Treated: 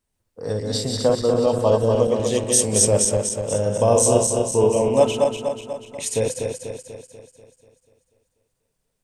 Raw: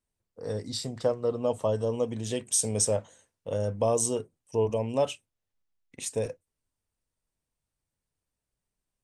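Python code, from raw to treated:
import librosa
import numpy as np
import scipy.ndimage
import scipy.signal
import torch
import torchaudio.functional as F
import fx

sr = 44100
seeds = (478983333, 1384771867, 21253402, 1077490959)

y = fx.reverse_delay_fb(x, sr, ms=122, feedback_pct=72, wet_db=-3.0)
y = fx.room_flutter(y, sr, wall_m=5.6, rt60_s=0.27, at=(3.93, 4.89))
y = y * librosa.db_to_amplitude(7.0)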